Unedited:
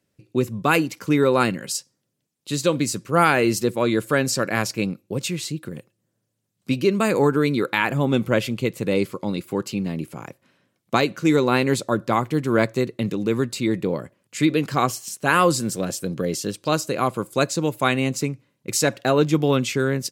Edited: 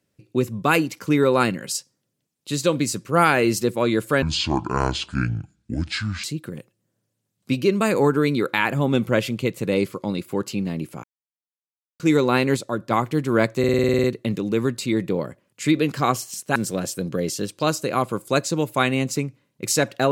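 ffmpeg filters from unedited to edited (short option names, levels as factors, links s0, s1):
-filter_complex "[0:a]asplit=17[s0][s1][s2][s3][s4][s5][s6][s7][s8][s9][s10][s11][s12][s13][s14][s15][s16];[s0]atrim=end=4.224[s17];[s1]atrim=start=4.22:end=5.43,asetpts=PTS-STARTPTS,asetrate=26460,aresample=44100[s18];[s2]atrim=start=5.426:end=10.23,asetpts=PTS-STARTPTS,afade=t=out:st=4.8:d=0.004:c=hsin[s19];[s3]atrim=start=10.23:end=11.19,asetpts=PTS-STARTPTS,volume=0[s20];[s4]atrim=start=11.19:end=11.762,asetpts=PTS-STARTPTS,afade=t=in:d=0.004:c=hsin[s21];[s5]atrim=start=11.758:end=12.102,asetpts=PTS-STARTPTS,volume=0.631[s22];[s6]atrim=start=12.098:end=12.832[s23];[s7]atrim=start=12.778:end=12.832[s24];[s8]atrim=start=12.778:end=12.832[s25];[s9]atrim=start=12.778:end=12.832[s26];[s10]atrim=start=12.778:end=12.832[s27];[s11]atrim=start=12.778:end=12.832[s28];[s12]atrim=start=12.778:end=12.832[s29];[s13]atrim=start=12.778:end=12.832[s30];[s14]atrim=start=12.778:end=12.832[s31];[s15]atrim=start=12.778:end=15.302[s32];[s16]atrim=start=15.608[s33];[s17][s18]acrossfade=d=0.004:c1=hsin:c2=hsin[s34];[s19][s20][s21]concat=n=3:v=0:a=1[s35];[s34][s35]acrossfade=d=0.004:c1=hsin:c2=hsin[s36];[s36][s22]acrossfade=d=0.004:c1=hsin:c2=hsin[s37];[s37][s23]acrossfade=d=0.004:c1=hsin:c2=hsin[s38];[s38][s24]acrossfade=d=0.004:c1=hsin:c2=hsin[s39];[s39][s25]acrossfade=d=0.004:c1=hsin:c2=hsin[s40];[s40][s26]acrossfade=d=0.004:c1=hsin:c2=hsin[s41];[s41][s27]acrossfade=d=0.004:c1=hsin:c2=hsin[s42];[s42][s28]acrossfade=d=0.004:c1=hsin:c2=hsin[s43];[s43][s29]acrossfade=d=0.004:c1=hsin:c2=hsin[s44];[s44][s30]acrossfade=d=0.004:c1=hsin:c2=hsin[s45];[s45][s31]acrossfade=d=0.004:c1=hsin:c2=hsin[s46];[s46][s32]acrossfade=d=0.004:c1=hsin:c2=hsin[s47];[s47][s33]acrossfade=d=0.004:c1=hsin:c2=hsin"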